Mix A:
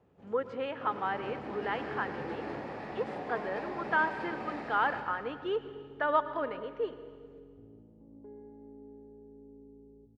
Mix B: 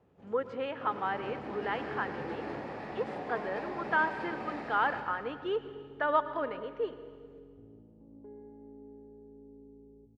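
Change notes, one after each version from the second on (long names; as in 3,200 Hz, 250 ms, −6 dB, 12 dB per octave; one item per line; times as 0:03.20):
nothing changed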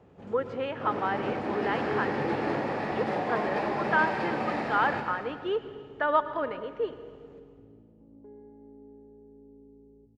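speech +3.0 dB
first sound +10.0 dB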